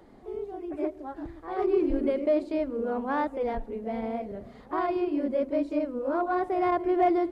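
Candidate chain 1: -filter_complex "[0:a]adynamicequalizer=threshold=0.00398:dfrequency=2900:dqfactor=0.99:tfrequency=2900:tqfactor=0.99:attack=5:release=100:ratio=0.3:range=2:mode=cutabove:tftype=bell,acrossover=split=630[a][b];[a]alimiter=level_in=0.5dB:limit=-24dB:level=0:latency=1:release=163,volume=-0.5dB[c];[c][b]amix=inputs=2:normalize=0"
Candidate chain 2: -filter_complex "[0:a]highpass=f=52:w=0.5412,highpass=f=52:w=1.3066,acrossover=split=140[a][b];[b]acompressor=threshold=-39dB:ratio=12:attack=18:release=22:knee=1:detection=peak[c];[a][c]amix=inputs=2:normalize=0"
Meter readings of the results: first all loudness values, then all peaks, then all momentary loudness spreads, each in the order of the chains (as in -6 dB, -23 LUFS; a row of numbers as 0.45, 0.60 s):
-31.0, -38.0 LUFS; -16.0, -24.5 dBFS; 10, 4 LU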